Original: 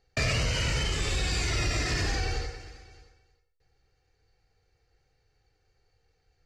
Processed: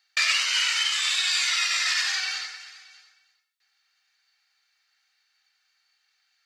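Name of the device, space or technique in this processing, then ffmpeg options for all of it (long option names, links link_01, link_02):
headphones lying on a table: -af "highpass=frequency=1200:width=0.5412,highpass=frequency=1200:width=1.3066,equalizer=frequency=3600:width_type=o:width=0.49:gain=6,volume=7dB"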